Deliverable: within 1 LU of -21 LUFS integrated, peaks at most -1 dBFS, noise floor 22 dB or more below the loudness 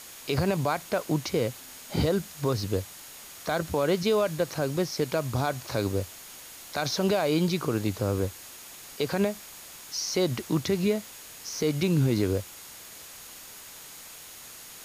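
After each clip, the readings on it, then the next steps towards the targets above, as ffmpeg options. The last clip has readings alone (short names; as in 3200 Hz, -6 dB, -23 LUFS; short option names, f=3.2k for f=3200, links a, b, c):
steady tone 6700 Hz; tone level -53 dBFS; noise floor -46 dBFS; noise floor target -50 dBFS; loudness -28.0 LUFS; peak -14.0 dBFS; loudness target -21.0 LUFS
-> -af "bandreject=f=6.7k:w=30"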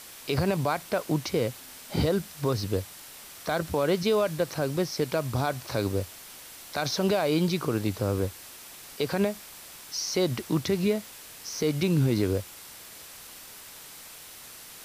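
steady tone none; noise floor -46 dBFS; noise floor target -50 dBFS
-> -af "afftdn=nr=6:nf=-46"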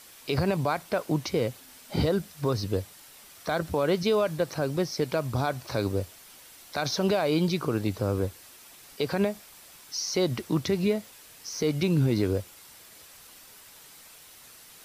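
noise floor -51 dBFS; loudness -28.0 LUFS; peak -14.5 dBFS; loudness target -21.0 LUFS
-> -af "volume=7dB"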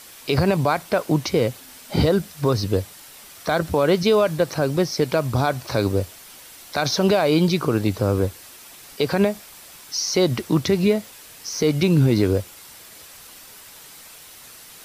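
loudness -21.0 LUFS; peak -7.5 dBFS; noise floor -44 dBFS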